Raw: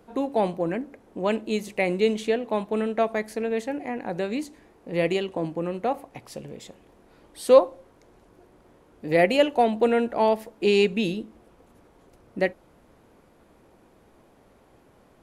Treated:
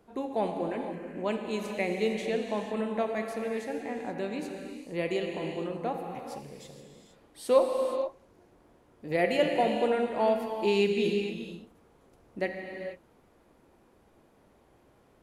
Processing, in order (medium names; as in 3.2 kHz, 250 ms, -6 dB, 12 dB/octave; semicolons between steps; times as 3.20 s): gated-style reverb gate 500 ms flat, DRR 2.5 dB; trim -7 dB